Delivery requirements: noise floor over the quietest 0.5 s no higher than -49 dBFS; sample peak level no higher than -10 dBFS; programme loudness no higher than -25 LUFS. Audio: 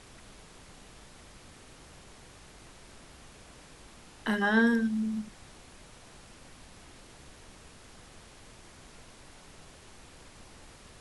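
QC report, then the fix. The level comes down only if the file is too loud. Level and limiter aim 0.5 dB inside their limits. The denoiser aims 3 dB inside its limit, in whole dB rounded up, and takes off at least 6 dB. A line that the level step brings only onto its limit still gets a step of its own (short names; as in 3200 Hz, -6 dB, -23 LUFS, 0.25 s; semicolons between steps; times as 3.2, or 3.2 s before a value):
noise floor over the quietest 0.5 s -52 dBFS: OK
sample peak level -12.5 dBFS: OK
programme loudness -28.5 LUFS: OK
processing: none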